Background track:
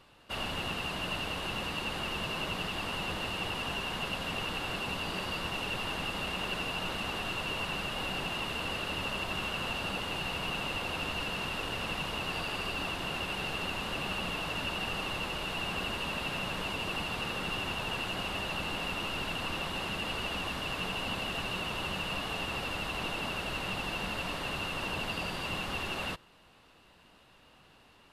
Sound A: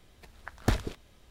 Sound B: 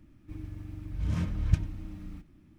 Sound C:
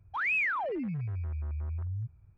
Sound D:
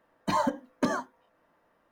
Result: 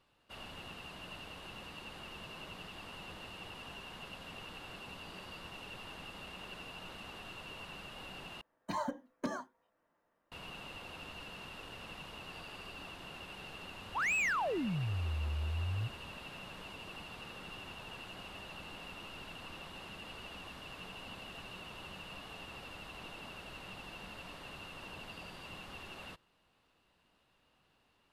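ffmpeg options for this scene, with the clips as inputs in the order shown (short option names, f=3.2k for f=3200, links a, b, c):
-filter_complex "[0:a]volume=-13dB[a];[3:a]asoftclip=type=hard:threshold=-29dB[b];[a]asplit=2[c][d];[c]atrim=end=8.414[e];[4:a]atrim=end=1.91,asetpts=PTS-STARTPTS,volume=-10.5dB[f];[d]atrim=start=10.316[g];[b]atrim=end=2.37,asetpts=PTS-STARTPTS,volume=-1.5dB,afade=t=in:d=0.004:c=hsin,afade=t=out:st=2.366:d=0.004:c=hsin,adelay=13810[h];[e][f]acrossfade=d=0.004:c1=hsin:c2=hsin[i];[i][g]acrossfade=d=0.004:c1=hsin:c2=hsin[j];[j][h]amix=inputs=2:normalize=0"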